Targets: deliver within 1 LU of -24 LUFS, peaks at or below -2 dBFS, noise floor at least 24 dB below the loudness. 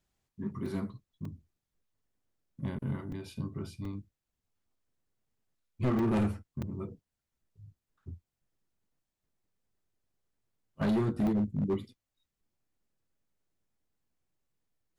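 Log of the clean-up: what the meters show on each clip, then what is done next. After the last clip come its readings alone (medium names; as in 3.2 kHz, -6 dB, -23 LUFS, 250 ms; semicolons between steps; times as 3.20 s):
clipped samples 1.5%; clipping level -24.5 dBFS; dropouts 7; longest dropout 3.3 ms; loudness -34.0 LUFS; peak level -24.5 dBFS; loudness target -24.0 LUFS
-> clip repair -24.5 dBFS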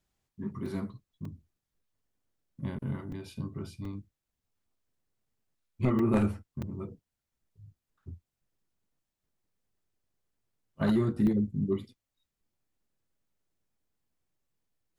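clipped samples 0.0%; dropouts 7; longest dropout 3.3 ms
-> interpolate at 0.66/1.25/3.12/3.85/5.99/6.62/11.27 s, 3.3 ms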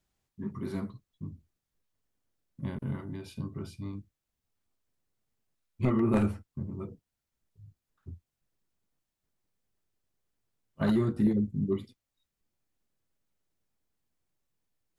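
dropouts 0; loudness -32.0 LUFS; peak level -15.5 dBFS; loudness target -24.0 LUFS
-> trim +8 dB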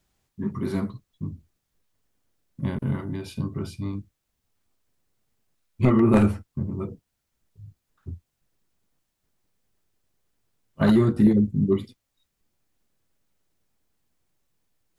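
loudness -24.0 LUFS; peak level -7.5 dBFS; noise floor -79 dBFS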